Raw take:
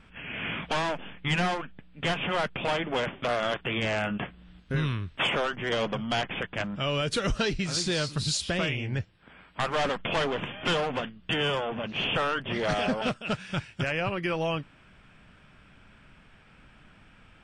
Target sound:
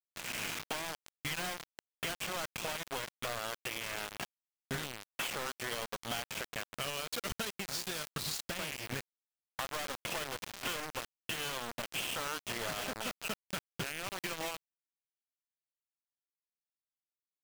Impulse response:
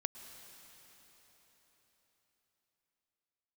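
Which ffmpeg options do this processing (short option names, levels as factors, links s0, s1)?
-af "lowshelf=f=410:g=-6,acompressor=threshold=0.0158:ratio=10,acrusher=bits=5:mix=0:aa=0.000001"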